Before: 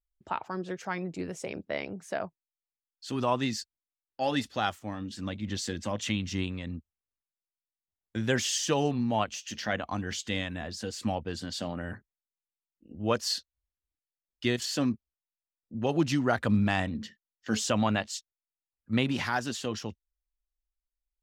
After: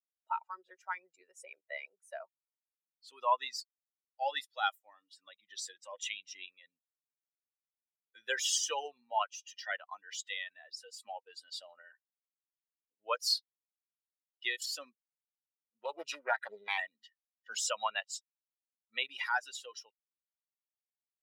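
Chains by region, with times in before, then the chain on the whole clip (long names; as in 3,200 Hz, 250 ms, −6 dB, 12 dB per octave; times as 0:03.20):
0:15.85–0:16.78: mains-hum notches 60/120 Hz + highs frequency-modulated by the lows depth 0.8 ms
whole clip: spectral dynamics exaggerated over time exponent 2; high-pass filter 680 Hz 24 dB per octave; comb filter 2.1 ms, depth 37%; level +2 dB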